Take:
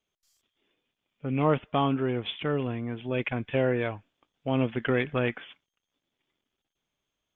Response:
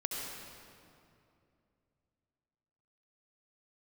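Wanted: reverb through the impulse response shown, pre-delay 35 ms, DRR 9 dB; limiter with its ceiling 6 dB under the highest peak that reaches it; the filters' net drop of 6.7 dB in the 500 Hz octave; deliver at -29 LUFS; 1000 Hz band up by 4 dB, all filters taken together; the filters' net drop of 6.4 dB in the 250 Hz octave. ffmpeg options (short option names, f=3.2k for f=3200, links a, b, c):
-filter_complex "[0:a]equalizer=f=250:t=o:g=-5.5,equalizer=f=500:t=o:g=-9,equalizer=f=1k:t=o:g=8,alimiter=limit=-18.5dB:level=0:latency=1,asplit=2[a][b];[1:a]atrim=start_sample=2205,adelay=35[c];[b][c]afir=irnorm=-1:irlink=0,volume=-12dB[d];[a][d]amix=inputs=2:normalize=0,volume=3dB"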